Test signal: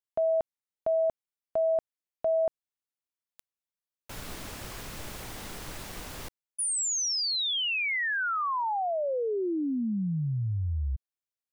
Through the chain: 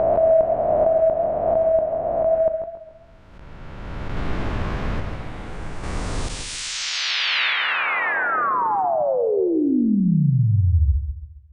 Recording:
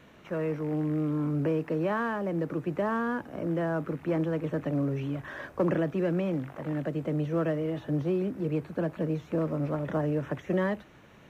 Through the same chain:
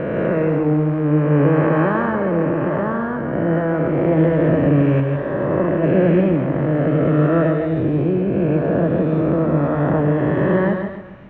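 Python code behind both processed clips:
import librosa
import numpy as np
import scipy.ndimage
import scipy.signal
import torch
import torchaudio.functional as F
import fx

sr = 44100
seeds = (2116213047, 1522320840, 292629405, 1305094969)

p1 = fx.spec_swells(x, sr, rise_s=2.99)
p2 = fx.tremolo_random(p1, sr, seeds[0], hz=1.2, depth_pct=55)
p3 = scipy.signal.sosfilt(scipy.signal.butter(2, 2100.0, 'lowpass', fs=sr, output='sos'), p2)
p4 = fx.low_shelf(p3, sr, hz=210.0, db=7.0)
p5 = p4 + fx.echo_single(p4, sr, ms=159, db=-8.5, dry=0)
p6 = fx.echo_warbled(p5, sr, ms=137, feedback_pct=43, rate_hz=2.8, cents=75, wet_db=-9.5)
y = p6 * librosa.db_to_amplitude(8.5)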